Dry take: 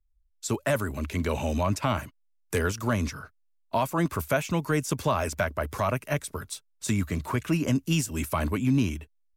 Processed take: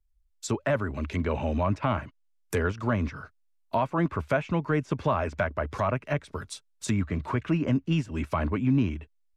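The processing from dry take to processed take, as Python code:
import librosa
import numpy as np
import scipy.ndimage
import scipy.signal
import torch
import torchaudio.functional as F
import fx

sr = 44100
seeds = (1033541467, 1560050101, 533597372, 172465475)

y = fx.env_lowpass_down(x, sr, base_hz=2300.0, full_db=-25.0)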